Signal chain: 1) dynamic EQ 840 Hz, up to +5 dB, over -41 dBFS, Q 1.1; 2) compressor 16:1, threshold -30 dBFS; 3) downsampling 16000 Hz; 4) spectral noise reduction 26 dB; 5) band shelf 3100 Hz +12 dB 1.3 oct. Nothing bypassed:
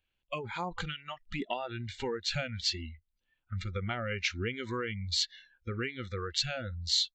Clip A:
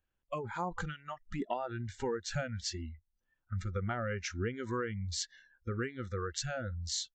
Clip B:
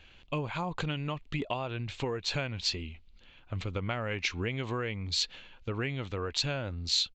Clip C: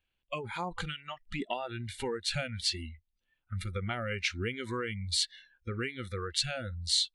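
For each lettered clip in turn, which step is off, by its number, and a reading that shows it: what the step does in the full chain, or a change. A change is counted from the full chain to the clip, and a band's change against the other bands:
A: 5, 4 kHz band -10.0 dB; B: 4, 125 Hz band +2.5 dB; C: 3, 8 kHz band +3.0 dB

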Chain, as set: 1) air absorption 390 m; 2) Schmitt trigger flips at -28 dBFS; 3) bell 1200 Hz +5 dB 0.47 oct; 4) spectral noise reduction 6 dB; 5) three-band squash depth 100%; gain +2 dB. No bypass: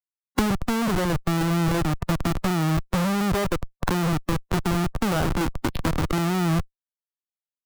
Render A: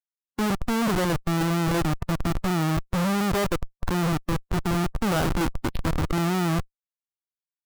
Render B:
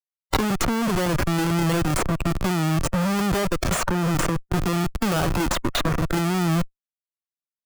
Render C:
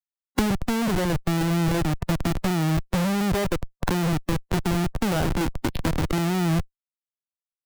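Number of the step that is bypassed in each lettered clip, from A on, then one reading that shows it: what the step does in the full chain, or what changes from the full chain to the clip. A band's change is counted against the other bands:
5, crest factor change -9.5 dB; 1, 8 kHz band +4.0 dB; 3, 1 kHz band -2.0 dB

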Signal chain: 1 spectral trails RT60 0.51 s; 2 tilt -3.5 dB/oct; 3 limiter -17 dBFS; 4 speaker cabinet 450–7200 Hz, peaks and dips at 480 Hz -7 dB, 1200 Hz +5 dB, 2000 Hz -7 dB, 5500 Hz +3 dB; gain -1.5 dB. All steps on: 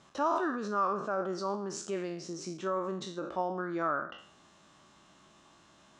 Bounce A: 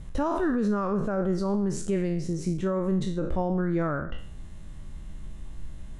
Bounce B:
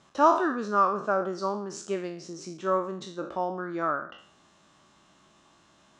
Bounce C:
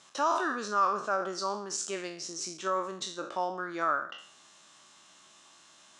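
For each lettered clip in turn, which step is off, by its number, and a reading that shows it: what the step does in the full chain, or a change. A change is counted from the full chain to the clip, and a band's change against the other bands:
4, 125 Hz band +15.0 dB; 3, mean gain reduction 1.5 dB; 2, 125 Hz band -11.0 dB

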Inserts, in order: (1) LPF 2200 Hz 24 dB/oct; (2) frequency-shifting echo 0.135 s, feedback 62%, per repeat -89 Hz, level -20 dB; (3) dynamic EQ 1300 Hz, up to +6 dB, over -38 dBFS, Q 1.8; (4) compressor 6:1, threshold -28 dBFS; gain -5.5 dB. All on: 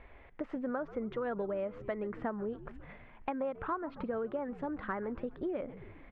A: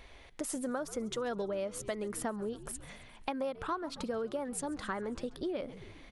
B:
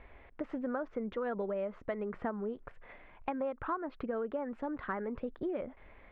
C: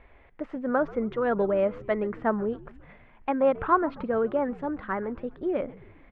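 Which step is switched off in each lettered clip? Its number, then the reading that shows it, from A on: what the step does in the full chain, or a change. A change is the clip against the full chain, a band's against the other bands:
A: 1, momentary loudness spread change -2 LU; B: 2, momentary loudness spread change +1 LU; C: 4, crest factor change +2.0 dB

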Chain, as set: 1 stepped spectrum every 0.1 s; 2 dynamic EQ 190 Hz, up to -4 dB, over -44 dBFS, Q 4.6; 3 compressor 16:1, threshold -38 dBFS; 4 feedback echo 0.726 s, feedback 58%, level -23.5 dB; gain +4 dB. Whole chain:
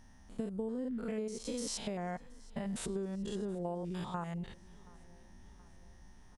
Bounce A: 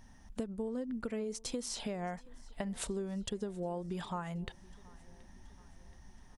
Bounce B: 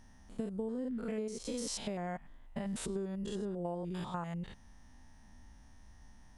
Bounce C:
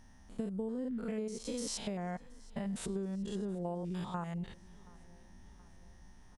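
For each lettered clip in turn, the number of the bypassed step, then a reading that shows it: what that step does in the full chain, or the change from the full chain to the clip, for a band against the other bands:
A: 1, 2 kHz band +1.5 dB; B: 4, echo-to-direct -22.0 dB to none; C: 2, 125 Hz band +2.0 dB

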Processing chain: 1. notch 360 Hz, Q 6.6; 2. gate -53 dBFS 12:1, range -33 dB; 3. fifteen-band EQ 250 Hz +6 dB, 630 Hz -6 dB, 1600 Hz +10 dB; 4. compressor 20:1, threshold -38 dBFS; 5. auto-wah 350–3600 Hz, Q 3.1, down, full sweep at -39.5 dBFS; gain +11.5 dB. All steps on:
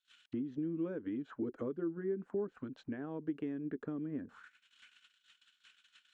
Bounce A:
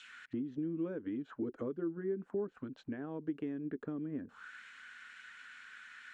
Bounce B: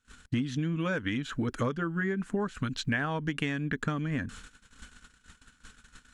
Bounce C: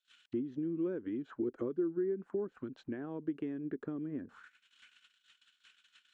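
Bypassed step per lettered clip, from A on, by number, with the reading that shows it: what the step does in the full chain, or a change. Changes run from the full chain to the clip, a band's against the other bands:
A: 2, momentary loudness spread change +7 LU; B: 5, 500 Hz band -12.5 dB; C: 1, 500 Hz band +3.0 dB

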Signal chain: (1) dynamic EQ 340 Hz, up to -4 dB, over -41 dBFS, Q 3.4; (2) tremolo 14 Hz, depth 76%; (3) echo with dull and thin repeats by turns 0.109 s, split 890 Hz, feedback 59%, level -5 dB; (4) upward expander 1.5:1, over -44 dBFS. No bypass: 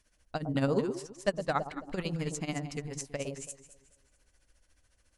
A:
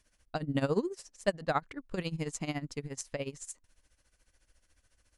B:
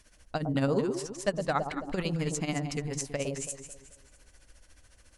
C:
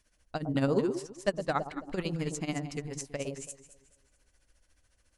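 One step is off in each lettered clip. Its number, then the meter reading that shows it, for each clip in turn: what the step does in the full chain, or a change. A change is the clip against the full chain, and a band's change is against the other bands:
3, loudness change -1.0 LU; 4, 8 kHz band +3.0 dB; 1, 250 Hz band +1.5 dB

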